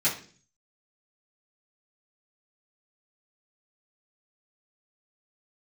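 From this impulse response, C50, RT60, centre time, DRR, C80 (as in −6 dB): 9.0 dB, 0.45 s, 23 ms, −11.5 dB, 14.0 dB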